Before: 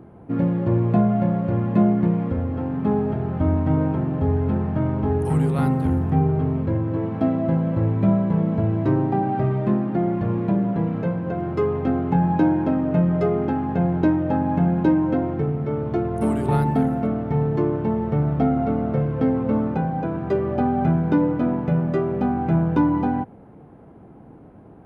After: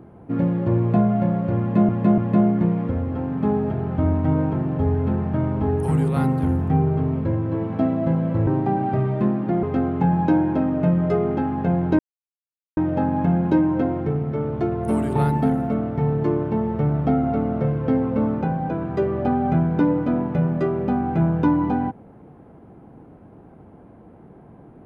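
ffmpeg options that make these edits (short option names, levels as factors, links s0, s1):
-filter_complex "[0:a]asplit=6[s0][s1][s2][s3][s4][s5];[s0]atrim=end=1.892[s6];[s1]atrim=start=1.598:end=1.892[s7];[s2]atrim=start=1.598:end=7.892[s8];[s3]atrim=start=8.928:end=10.092[s9];[s4]atrim=start=11.738:end=14.1,asetpts=PTS-STARTPTS,afade=t=out:st=2.358:d=0.004:c=hsin,apad=pad_dur=0.78[s10];[s5]atrim=start=14.1,asetpts=PTS-STARTPTS,afade=t=in:d=0.004:c=hsin[s11];[s6][s7]acrossfade=d=0.004:c1=hsin:c2=hsin[s12];[s12][s8]acrossfade=d=0.004:c1=hsin:c2=hsin[s13];[s13][s9]acrossfade=d=0.004:c1=hsin:c2=hsin[s14];[s10][s11]concat=n=2:v=0:a=1[s15];[s14][s15]acrossfade=d=0.004:c1=hsin:c2=hsin"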